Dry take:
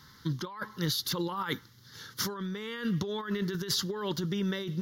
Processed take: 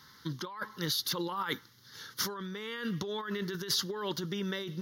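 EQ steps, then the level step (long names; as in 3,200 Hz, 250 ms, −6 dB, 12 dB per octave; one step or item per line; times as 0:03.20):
low-shelf EQ 190 Hz −10.5 dB
notch filter 7,400 Hz, Q 9.3
0.0 dB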